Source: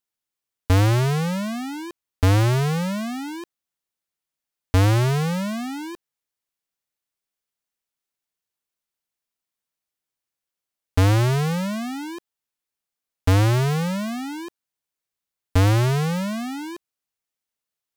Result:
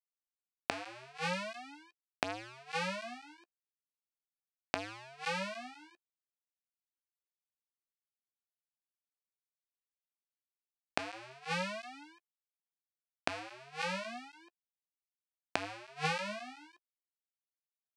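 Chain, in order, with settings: flange 0.39 Hz, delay 8.5 ms, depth 8.4 ms, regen +9%; power-law waveshaper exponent 3; inverted gate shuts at -32 dBFS, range -31 dB; cabinet simulation 400–8400 Hz, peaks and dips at 440 Hz -8 dB, 700 Hz +7 dB, 1.6 kHz +4 dB, 2.5 kHz +9 dB, 4.5 kHz +4 dB, 6.9 kHz -4 dB; trim +17.5 dB

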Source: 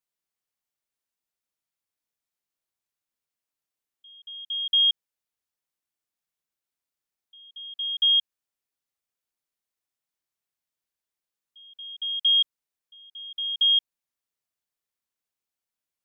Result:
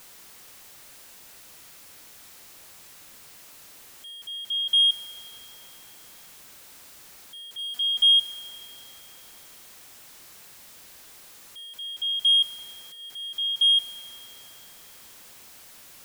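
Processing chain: jump at every zero crossing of -42 dBFS; 7.58–8.19 s: comb 4.1 ms, depth 92%; in parallel at -6.5 dB: hard clipper -20.5 dBFS, distortion -11 dB; on the sum: reverberation RT60 3.2 s, pre-delay 3 ms, DRR 13.5 dB; trim -2.5 dB

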